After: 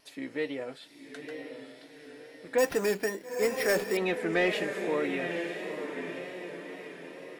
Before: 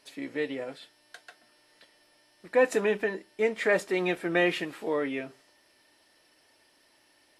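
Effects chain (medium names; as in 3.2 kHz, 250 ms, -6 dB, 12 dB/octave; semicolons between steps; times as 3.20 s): echo that smears into a reverb 926 ms, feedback 50%, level -7 dB; in parallel at -10 dB: sine folder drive 5 dB, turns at -12 dBFS; 2.58–3.97 s: on the sum: careless resampling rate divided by 6×, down none, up hold; wow and flutter 55 cents; trim -6.5 dB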